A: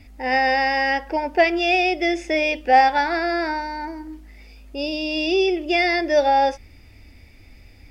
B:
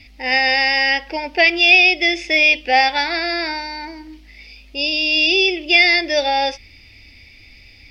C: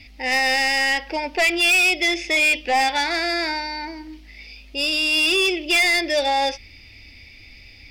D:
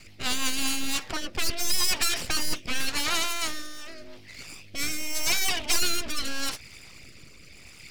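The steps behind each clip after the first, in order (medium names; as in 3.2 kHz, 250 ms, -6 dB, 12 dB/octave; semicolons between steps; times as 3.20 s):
high-order bell 3.4 kHz +13.5 dB; trim -2 dB
saturation -14 dBFS, distortion -10 dB
full-wave rectifier; harmonic-percussive split harmonic -9 dB; rotary cabinet horn 6.3 Hz, later 0.85 Hz, at 0.24 s; trim +5.5 dB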